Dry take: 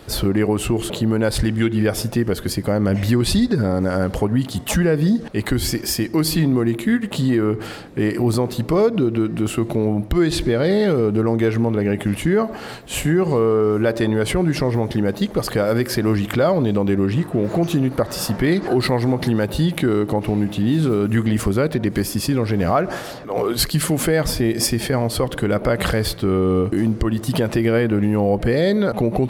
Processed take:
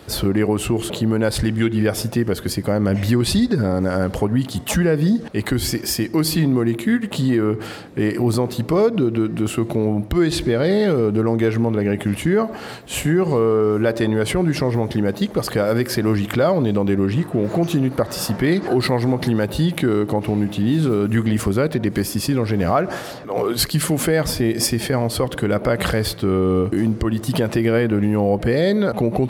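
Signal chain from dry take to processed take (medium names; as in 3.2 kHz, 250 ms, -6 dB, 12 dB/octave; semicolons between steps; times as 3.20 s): high-pass 52 Hz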